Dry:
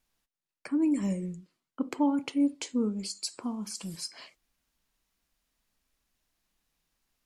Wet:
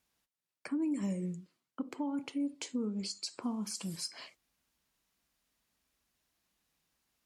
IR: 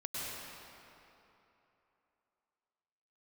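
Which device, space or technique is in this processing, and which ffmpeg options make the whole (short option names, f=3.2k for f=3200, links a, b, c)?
podcast mastering chain: -filter_complex "[0:a]asettb=1/sr,asplit=3[a][b][c];[a]atrim=end=2.854[d];[b]atrim=start=2.85:end=3.42,asetpts=PTS-STARTPTS,afade=t=in:d=0.004:c=qsin,afade=t=out:st=0.566:d=0.004:c=qsin,lowpass=6.5k[e];[c]atrim=start=3.416[f];[d][e]acrossfade=d=0.004:c1=hsin:c2=qsin[g];[g][f]acrossfade=d=0.004:c1=qsin:c2=hsin,highpass=61,deesser=0.65,acompressor=threshold=-30dB:ratio=4,alimiter=level_in=2dB:limit=-24dB:level=0:latency=1:release=231,volume=-2dB" -ar 44100 -c:a libmp3lame -b:a 112k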